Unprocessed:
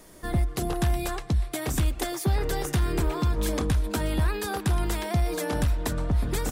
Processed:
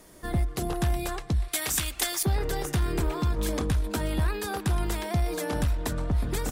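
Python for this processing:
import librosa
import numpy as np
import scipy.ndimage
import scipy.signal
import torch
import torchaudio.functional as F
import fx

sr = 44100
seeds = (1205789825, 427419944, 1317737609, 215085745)

y = fx.tilt_shelf(x, sr, db=-9.5, hz=930.0, at=(1.48, 2.23))
y = fx.cheby_harmonics(y, sr, harmonics=(6,), levels_db=(-33,), full_scale_db=-9.0)
y = y * 10.0 ** (-1.5 / 20.0)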